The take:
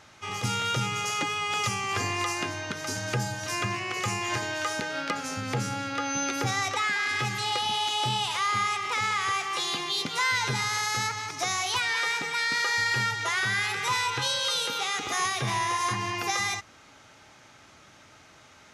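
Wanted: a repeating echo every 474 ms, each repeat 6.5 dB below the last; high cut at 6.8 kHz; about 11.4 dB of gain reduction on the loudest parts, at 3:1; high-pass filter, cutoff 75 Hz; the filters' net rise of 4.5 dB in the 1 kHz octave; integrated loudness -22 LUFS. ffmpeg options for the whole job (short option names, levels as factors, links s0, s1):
-af "highpass=75,lowpass=6800,equalizer=f=1000:t=o:g=5.5,acompressor=threshold=0.0158:ratio=3,aecho=1:1:474|948|1422|1896|2370|2844:0.473|0.222|0.105|0.0491|0.0231|0.0109,volume=3.98"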